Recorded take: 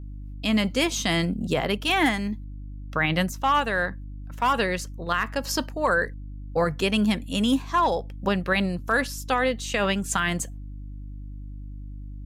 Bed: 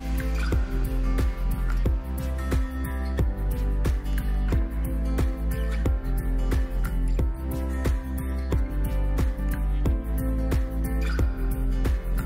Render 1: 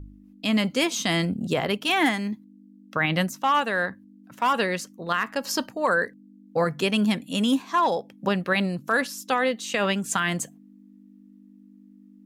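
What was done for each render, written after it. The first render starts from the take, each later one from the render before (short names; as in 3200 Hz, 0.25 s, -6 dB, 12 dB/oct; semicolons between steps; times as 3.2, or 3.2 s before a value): de-hum 50 Hz, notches 3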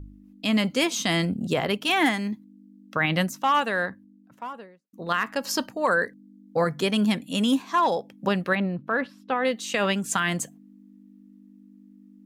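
3.63–4.93 studio fade out; 6.05–6.96 notch 2700 Hz, Q 8.5; 8.55–9.45 air absorption 460 m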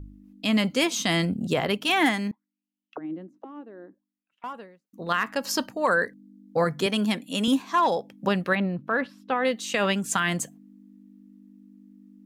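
2.31–4.44 auto-wah 320–3500 Hz, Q 7.4, down, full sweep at -24.5 dBFS; 6.86–7.48 HPF 210 Hz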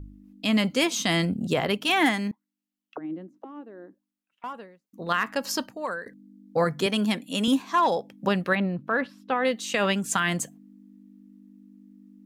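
5.41–6.06 fade out, to -17 dB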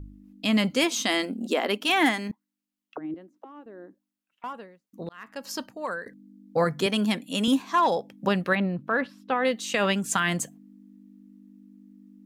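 0.84–2.3 brick-wall FIR high-pass 200 Hz; 3.14–3.66 HPF 540 Hz 6 dB/oct; 5.09–5.94 fade in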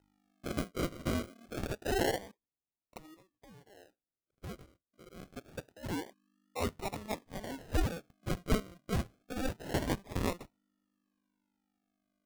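band-pass sweep 1600 Hz -> 3800 Hz, 7.85–11.77; decimation with a swept rate 39×, swing 60% 0.26 Hz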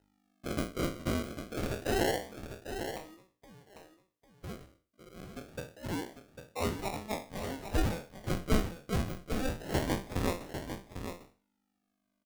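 spectral trails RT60 0.36 s; echo 0.799 s -8.5 dB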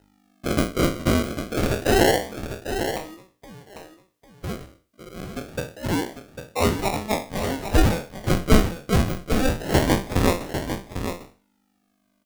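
gain +12 dB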